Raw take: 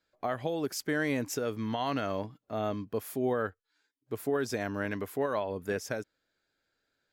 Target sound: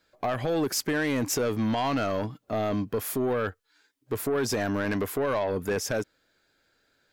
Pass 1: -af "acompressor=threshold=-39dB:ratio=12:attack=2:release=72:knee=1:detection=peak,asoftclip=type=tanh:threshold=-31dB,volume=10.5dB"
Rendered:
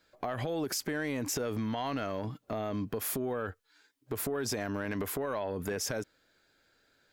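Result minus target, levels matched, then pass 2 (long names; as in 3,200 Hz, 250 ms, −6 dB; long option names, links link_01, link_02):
downward compressor: peak gain reduction +9.5 dB
-af "acompressor=threshold=-28.5dB:ratio=12:attack=2:release=72:knee=1:detection=peak,asoftclip=type=tanh:threshold=-31dB,volume=10.5dB"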